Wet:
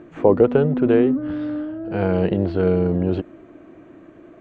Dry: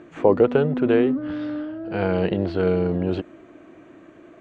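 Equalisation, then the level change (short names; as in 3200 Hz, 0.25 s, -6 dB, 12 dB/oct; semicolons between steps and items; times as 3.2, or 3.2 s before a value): tilt -2 dB/oct; low shelf 190 Hz -3 dB; 0.0 dB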